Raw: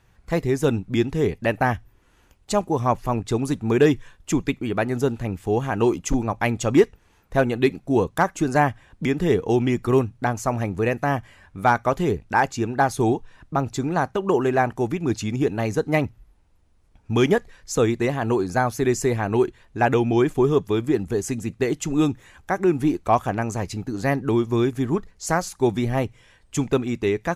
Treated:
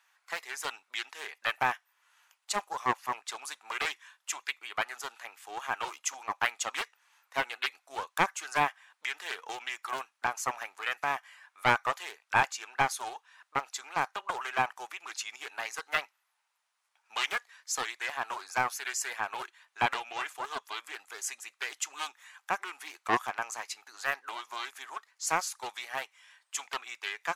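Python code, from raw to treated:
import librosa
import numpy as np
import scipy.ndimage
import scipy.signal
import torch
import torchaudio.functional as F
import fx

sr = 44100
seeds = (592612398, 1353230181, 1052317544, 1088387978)

y = scipy.signal.sosfilt(scipy.signal.butter(4, 950.0, 'highpass', fs=sr, output='sos'), x)
y = fx.doppler_dist(y, sr, depth_ms=0.28)
y = y * 10.0 ** (-2.0 / 20.0)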